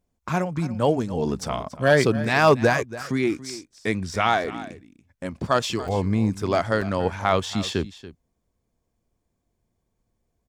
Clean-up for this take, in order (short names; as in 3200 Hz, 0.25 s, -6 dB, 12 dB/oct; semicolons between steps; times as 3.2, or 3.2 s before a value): clip repair -7 dBFS; interpolate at 4.44/5.88/6.81, 5.1 ms; inverse comb 0.283 s -16 dB